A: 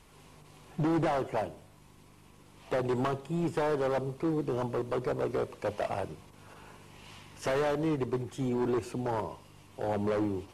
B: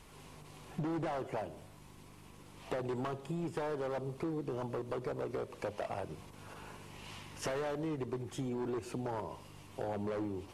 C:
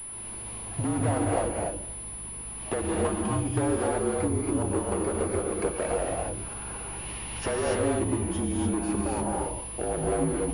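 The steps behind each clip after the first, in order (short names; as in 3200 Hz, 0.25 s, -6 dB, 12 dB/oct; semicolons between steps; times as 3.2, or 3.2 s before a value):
compressor, threshold -37 dBFS, peak gain reduction 10.5 dB; gain +1.5 dB
frequency shift -44 Hz; non-linear reverb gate 0.31 s rising, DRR -1.5 dB; pulse-width modulation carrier 10000 Hz; gain +6.5 dB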